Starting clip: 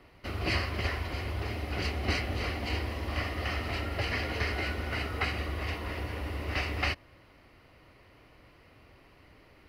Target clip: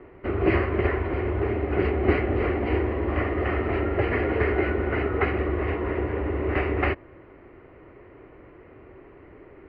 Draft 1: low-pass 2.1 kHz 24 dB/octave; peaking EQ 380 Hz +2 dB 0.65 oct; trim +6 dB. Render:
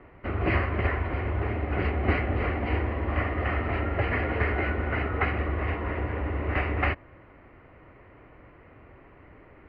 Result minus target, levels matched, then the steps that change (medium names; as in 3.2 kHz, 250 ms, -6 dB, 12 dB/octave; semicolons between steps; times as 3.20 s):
500 Hz band -4.5 dB
change: peaking EQ 380 Hz +12.5 dB 0.65 oct